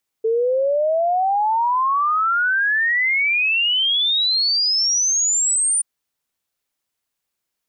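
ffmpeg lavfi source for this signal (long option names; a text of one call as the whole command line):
ffmpeg -f lavfi -i "aevalsrc='0.168*clip(min(t,5.58-t)/0.01,0,1)*sin(2*PI*440*5.58/log(9300/440)*(exp(log(9300/440)*t/5.58)-1))':duration=5.58:sample_rate=44100" out.wav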